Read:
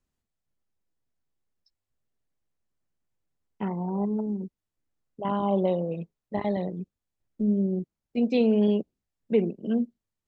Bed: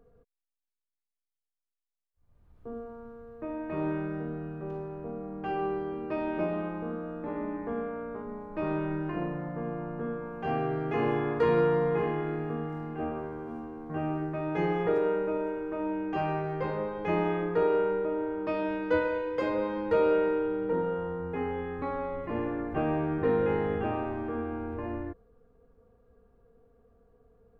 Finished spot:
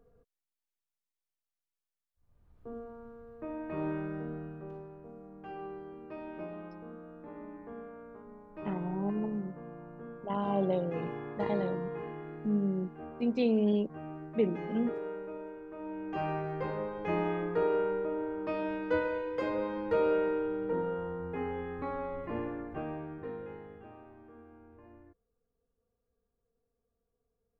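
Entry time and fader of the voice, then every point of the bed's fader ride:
5.05 s, −5.5 dB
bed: 0:04.36 −3.5 dB
0:05.07 −11.5 dB
0:15.71 −11.5 dB
0:16.24 −3.5 dB
0:22.33 −3.5 dB
0:23.77 −20.5 dB

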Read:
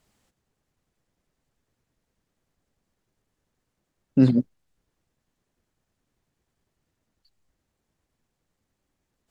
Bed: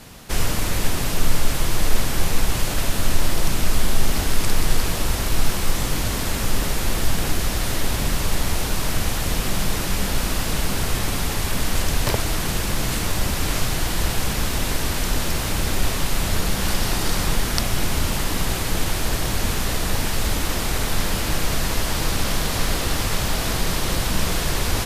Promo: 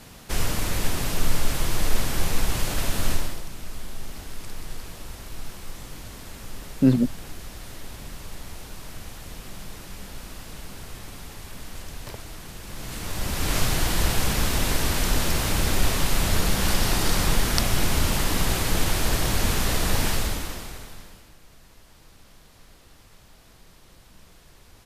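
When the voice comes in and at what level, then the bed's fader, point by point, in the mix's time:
2.65 s, −0.5 dB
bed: 0:03.12 −3.5 dB
0:03.46 −16.5 dB
0:12.59 −16.5 dB
0:13.58 −0.5 dB
0:20.11 −0.5 dB
0:21.36 −30 dB

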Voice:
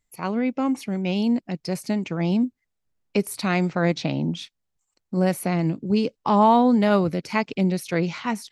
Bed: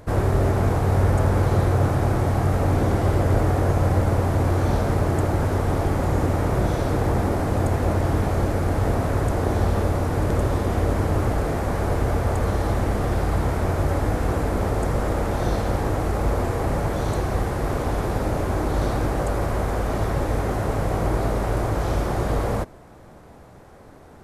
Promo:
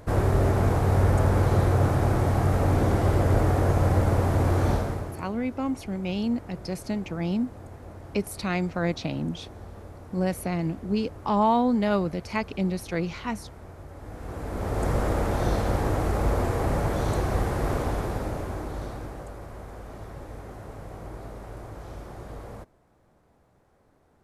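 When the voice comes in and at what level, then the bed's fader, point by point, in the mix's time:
5.00 s, −5.0 dB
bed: 0:04.71 −2 dB
0:05.34 −21.5 dB
0:13.92 −21.5 dB
0:14.88 −2 dB
0:17.73 −2 dB
0:19.39 −17 dB

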